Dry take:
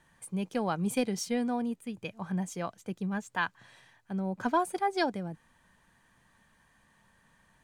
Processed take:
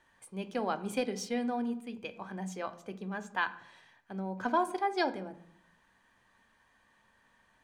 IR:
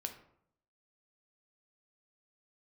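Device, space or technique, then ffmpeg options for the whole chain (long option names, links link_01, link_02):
filtered reverb send: -filter_complex "[0:a]asplit=2[link_01][link_02];[link_02]highpass=frequency=160:width=0.5412,highpass=frequency=160:width=1.3066,lowpass=6500[link_03];[1:a]atrim=start_sample=2205[link_04];[link_03][link_04]afir=irnorm=-1:irlink=0,volume=2.5dB[link_05];[link_01][link_05]amix=inputs=2:normalize=0,volume=-7dB"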